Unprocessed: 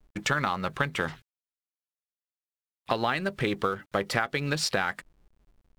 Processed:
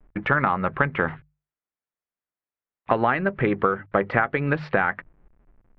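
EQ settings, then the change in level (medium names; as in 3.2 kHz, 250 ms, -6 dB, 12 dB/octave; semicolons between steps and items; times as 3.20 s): low-pass 2.1 kHz 24 dB/octave; hum notches 50/100/150 Hz; +6.5 dB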